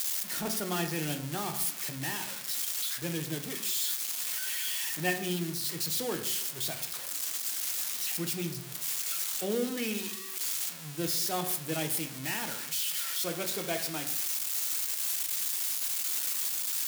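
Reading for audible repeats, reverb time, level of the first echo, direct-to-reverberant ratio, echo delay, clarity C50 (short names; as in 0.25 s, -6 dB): none, 0.70 s, none, 5.0 dB, none, 10.0 dB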